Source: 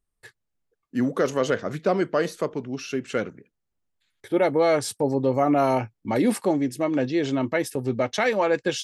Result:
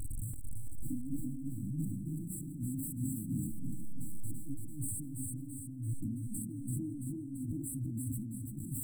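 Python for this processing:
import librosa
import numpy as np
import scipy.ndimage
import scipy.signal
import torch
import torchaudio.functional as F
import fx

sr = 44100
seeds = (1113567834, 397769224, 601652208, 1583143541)

y = x + 0.5 * 10.0 ** (-34.0 / 20.0) * np.sign(x)
y = fx.high_shelf(y, sr, hz=9700.0, db=-7.5)
y = fx.hpss(y, sr, part='percussive', gain_db=-14)
y = fx.graphic_eq_15(y, sr, hz=(100, 400, 6300), db=(7, 9, 6))
y = fx.over_compress(y, sr, threshold_db=-35.0, ratio=-1.0)
y = 10.0 ** (-28.5 / 20.0) * np.tanh(y / 10.0 ** (-28.5 / 20.0))
y = fx.brickwall_bandstop(y, sr, low_hz=320.0, high_hz=7600.0)
y = fx.echo_feedback(y, sr, ms=336, feedback_pct=54, wet_db=-5.0)
y = fx.sustainer(y, sr, db_per_s=34.0)
y = y * librosa.db_to_amplitude(-2.5)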